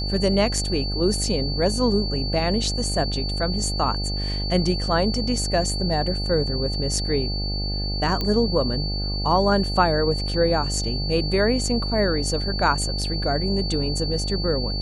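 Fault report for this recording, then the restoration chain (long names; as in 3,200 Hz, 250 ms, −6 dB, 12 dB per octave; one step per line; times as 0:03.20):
mains buzz 50 Hz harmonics 17 −27 dBFS
whistle 4,500 Hz −29 dBFS
0:08.21: click −12 dBFS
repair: click removal
notch filter 4,500 Hz, Q 30
hum removal 50 Hz, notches 17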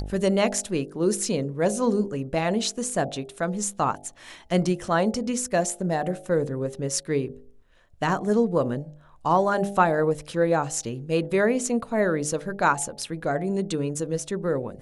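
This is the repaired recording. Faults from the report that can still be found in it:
none of them is left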